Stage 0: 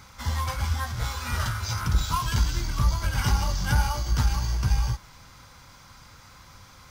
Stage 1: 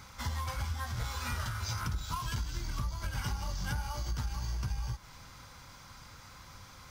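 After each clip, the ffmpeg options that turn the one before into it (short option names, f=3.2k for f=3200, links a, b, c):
-af "acompressor=threshold=-30dB:ratio=6,volume=-2dB"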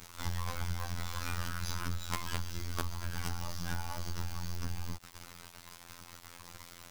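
-af "acrusher=bits=5:dc=4:mix=0:aa=0.000001,afftfilt=real='hypot(re,im)*cos(PI*b)':imag='0':win_size=2048:overlap=0.75,volume=5.5dB"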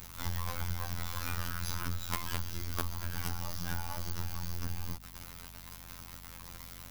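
-af "aeval=exprs='val(0)+0.00251*(sin(2*PI*50*n/s)+sin(2*PI*2*50*n/s)/2+sin(2*PI*3*50*n/s)/3+sin(2*PI*4*50*n/s)/4+sin(2*PI*5*50*n/s)/5)':c=same,aexciter=amount=2.3:drive=5:freq=11k"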